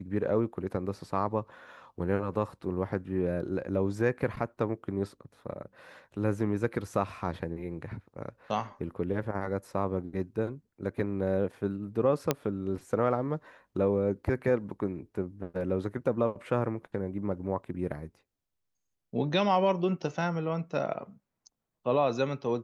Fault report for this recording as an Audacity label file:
12.310000	12.310000	pop -10 dBFS

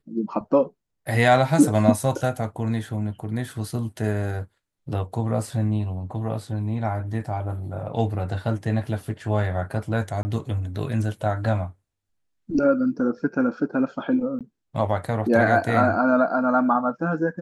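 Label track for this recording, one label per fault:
10.230000	10.250000	dropout 20 ms
14.390000	14.410000	dropout 17 ms

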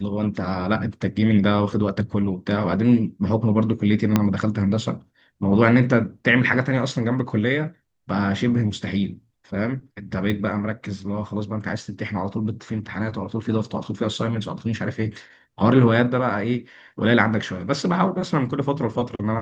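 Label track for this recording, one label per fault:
4.160000	4.160000	pop -4 dBFS
10.300000	10.300000	pop -13 dBFS

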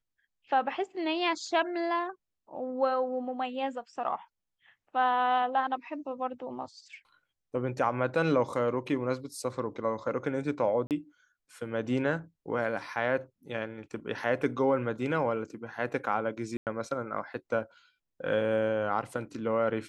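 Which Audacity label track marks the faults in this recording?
10.870000	10.910000	dropout 38 ms
16.570000	16.670000	dropout 98 ms

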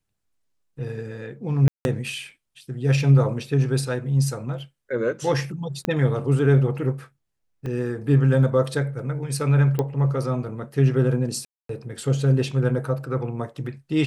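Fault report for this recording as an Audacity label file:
1.680000	1.850000	dropout 171 ms
5.850000	5.850000	pop -10 dBFS
7.660000	7.660000	dropout 2.6 ms
9.790000	9.790000	pop -12 dBFS
11.450000	11.690000	dropout 243 ms

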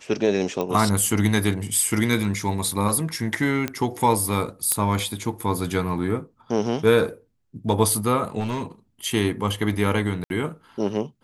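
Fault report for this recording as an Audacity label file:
0.610000	0.610000	pop -14 dBFS
3.680000	3.680000	pop -11 dBFS
4.720000	4.720000	pop -5 dBFS
8.390000	8.640000	clipped -22 dBFS
10.240000	10.300000	dropout 61 ms

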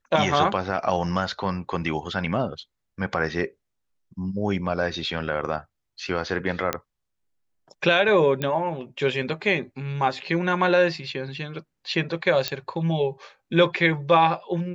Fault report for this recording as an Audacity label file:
6.730000	6.730000	pop -8 dBFS
8.420000	8.420000	pop -13 dBFS
12.480000	12.480000	pop -9 dBFS

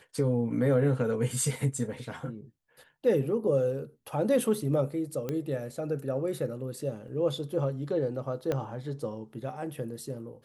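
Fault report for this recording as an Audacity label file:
5.290000	5.290000	pop -19 dBFS
7.080000	7.080000	dropout 4.2 ms
8.520000	8.520000	pop -17 dBFS

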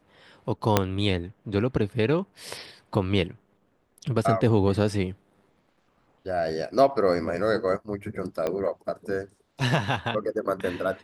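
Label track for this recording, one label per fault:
0.770000	0.770000	pop -3 dBFS
8.470000	8.470000	pop -15 dBFS

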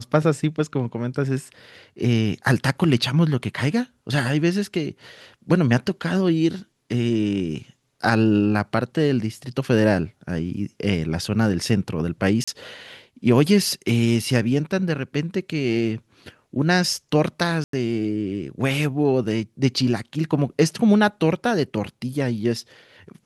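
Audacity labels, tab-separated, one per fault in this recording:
12.440000	12.470000	dropout 35 ms
17.640000	17.730000	dropout 93 ms

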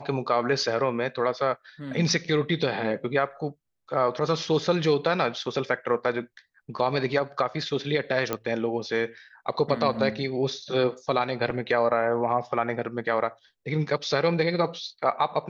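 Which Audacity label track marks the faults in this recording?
8.330000	8.330000	pop -12 dBFS

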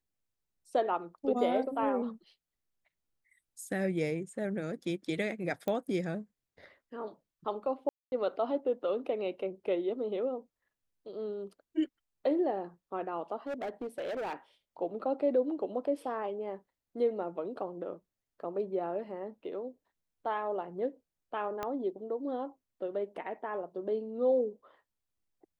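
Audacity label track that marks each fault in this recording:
5.680000	5.680000	pop -21 dBFS
7.890000	8.120000	dropout 231 ms
13.470000	14.340000	clipped -33 dBFS
21.630000	21.630000	pop -21 dBFS

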